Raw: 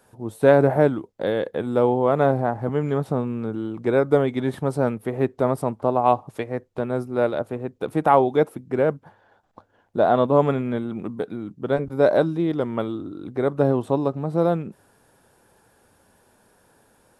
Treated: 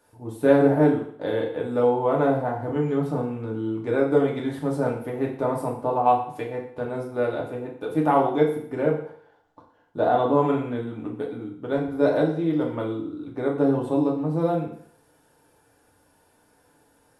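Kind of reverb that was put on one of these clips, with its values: FDN reverb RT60 0.6 s, low-frequency decay 0.85×, high-frequency decay 1×, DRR -2.5 dB; gain -7 dB

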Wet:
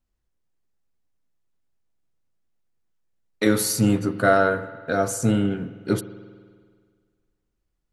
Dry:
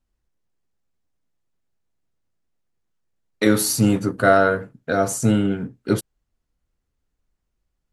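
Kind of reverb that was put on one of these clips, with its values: spring tank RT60 1.8 s, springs 49 ms, chirp 80 ms, DRR 13 dB; gain -2.5 dB

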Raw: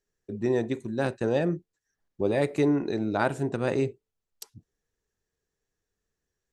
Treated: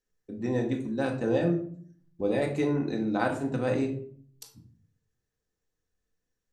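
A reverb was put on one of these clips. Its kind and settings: shoebox room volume 610 m³, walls furnished, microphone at 2 m; gain -4.5 dB

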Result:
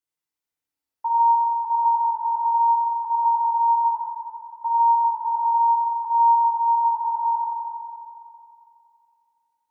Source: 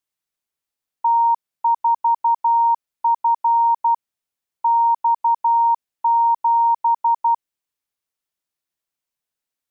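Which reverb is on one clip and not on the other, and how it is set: FDN reverb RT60 2.6 s, high-frequency decay 0.5×, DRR -6.5 dB; gain -9 dB

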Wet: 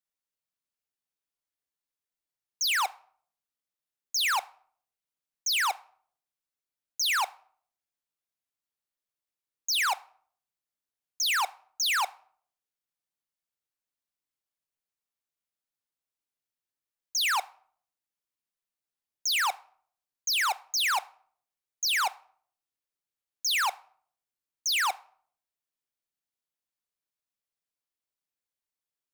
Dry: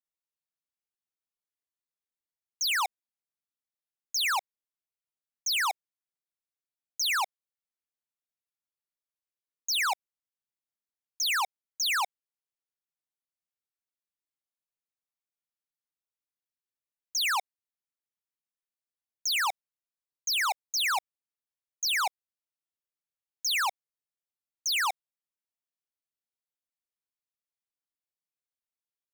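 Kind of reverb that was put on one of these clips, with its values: shoebox room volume 780 m³, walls furnished, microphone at 0.36 m; gain +1 dB

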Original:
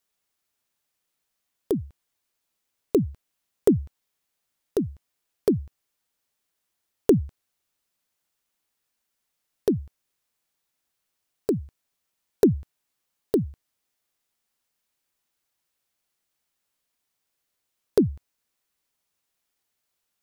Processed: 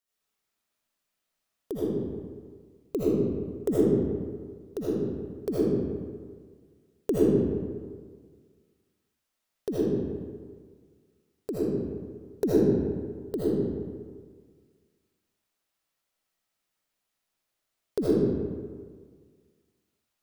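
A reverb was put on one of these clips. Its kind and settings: digital reverb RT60 1.7 s, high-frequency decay 0.6×, pre-delay 40 ms, DRR -9.5 dB; gain -10 dB

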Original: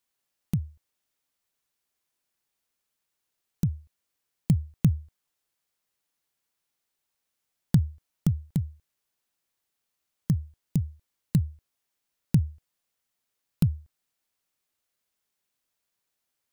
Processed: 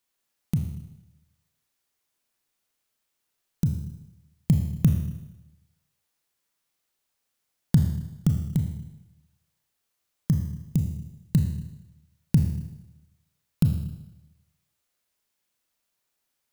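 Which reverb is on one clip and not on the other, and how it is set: Schroeder reverb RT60 0.96 s, combs from 26 ms, DRR 4 dB; gain +1.5 dB

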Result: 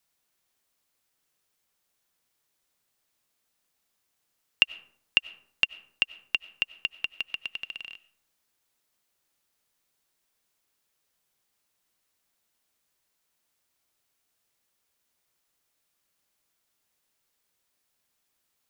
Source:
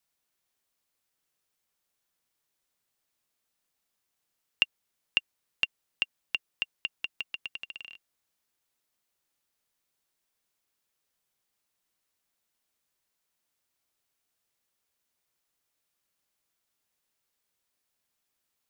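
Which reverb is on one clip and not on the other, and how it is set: digital reverb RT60 0.68 s, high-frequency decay 0.45×, pre-delay 55 ms, DRR 19 dB; gain +4 dB

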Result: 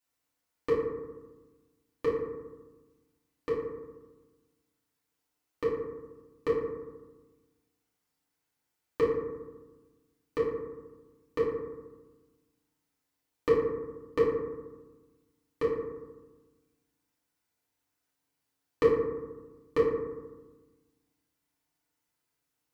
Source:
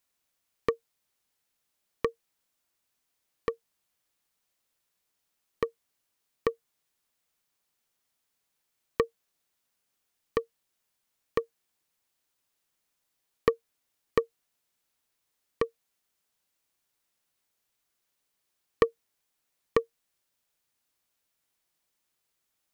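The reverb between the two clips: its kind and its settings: FDN reverb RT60 1.2 s, low-frequency decay 1.4×, high-frequency decay 0.35×, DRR -9 dB; gain -10 dB

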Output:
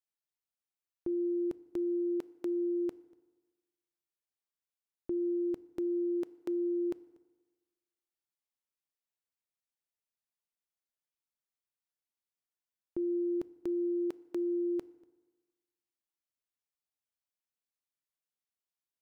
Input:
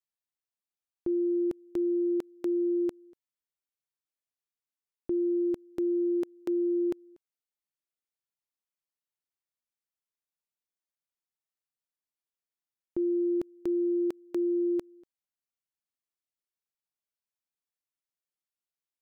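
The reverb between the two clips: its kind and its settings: FDN reverb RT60 1.3 s, low-frequency decay 0.95×, high-frequency decay 0.65×, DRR 18 dB; gain -4 dB

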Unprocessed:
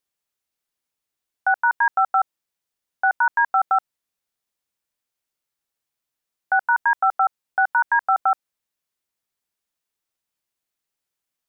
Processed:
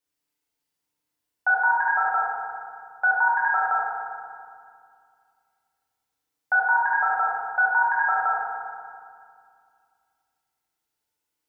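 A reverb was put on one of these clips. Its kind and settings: FDN reverb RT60 2.2 s, low-frequency decay 1.4×, high-frequency decay 0.65×, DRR -6.5 dB; gain -5 dB

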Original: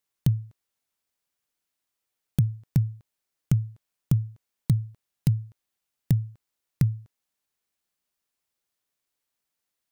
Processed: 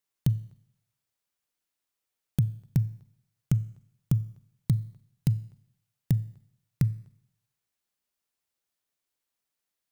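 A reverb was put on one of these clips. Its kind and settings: Schroeder reverb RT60 0.75 s, combs from 29 ms, DRR 18 dB; gain -2.5 dB

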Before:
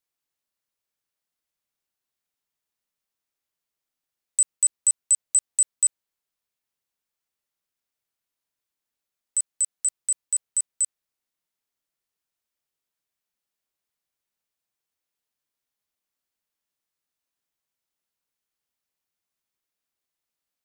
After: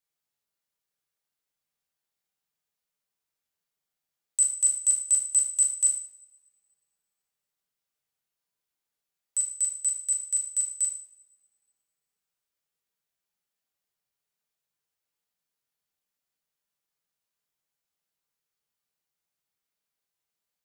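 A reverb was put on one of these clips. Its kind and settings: two-slope reverb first 0.51 s, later 1.7 s, from -24 dB, DRR -0.5 dB; gain -4 dB

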